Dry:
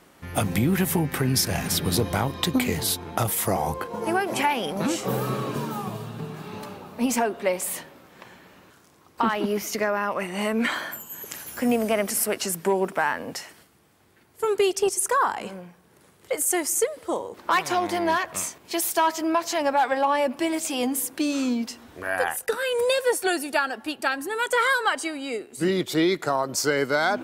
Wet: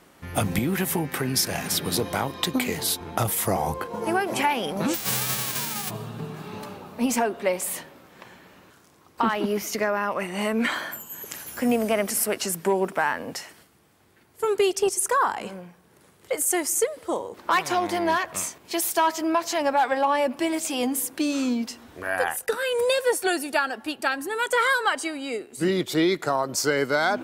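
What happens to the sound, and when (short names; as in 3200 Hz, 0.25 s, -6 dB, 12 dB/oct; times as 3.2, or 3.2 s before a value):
0.59–3.01 HPF 240 Hz 6 dB/oct
4.93–5.89 spectral whitening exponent 0.1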